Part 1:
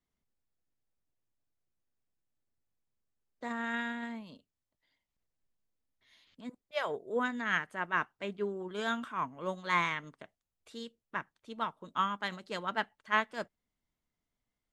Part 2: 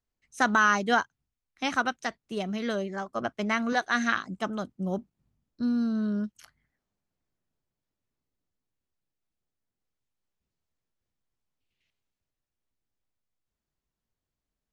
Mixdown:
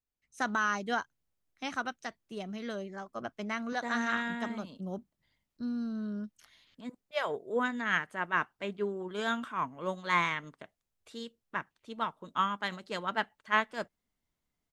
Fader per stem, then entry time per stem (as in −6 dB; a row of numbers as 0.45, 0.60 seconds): +1.5, −8.0 decibels; 0.40, 0.00 seconds